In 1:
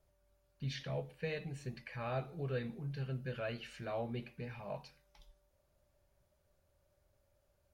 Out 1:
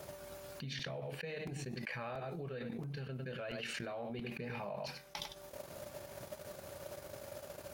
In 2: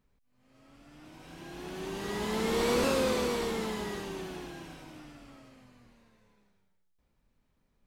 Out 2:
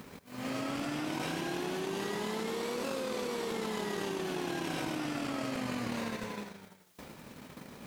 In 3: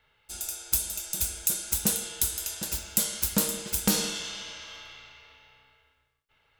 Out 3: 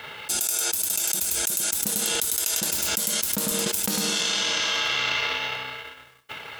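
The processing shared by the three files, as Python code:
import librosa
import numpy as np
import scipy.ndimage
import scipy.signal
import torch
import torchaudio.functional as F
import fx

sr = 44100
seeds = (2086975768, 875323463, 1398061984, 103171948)

p1 = np.where(np.abs(x) >= 10.0 ** (-18.5 / 20.0), x, 0.0)
p2 = x + (p1 * 10.0 ** (-12.0 / 20.0))
p3 = scipy.signal.sosfilt(scipy.signal.butter(2, 160.0, 'highpass', fs=sr, output='sos'), p2)
p4 = fx.transient(p3, sr, attack_db=5, sustain_db=-12)
p5 = p4 + fx.echo_single(p4, sr, ms=100, db=-16.0, dry=0)
p6 = fx.buffer_crackle(p5, sr, first_s=0.79, period_s=0.68, block=128, kind='repeat')
p7 = fx.env_flatten(p6, sr, amount_pct=100)
y = p7 * 10.0 ** (-10.5 / 20.0)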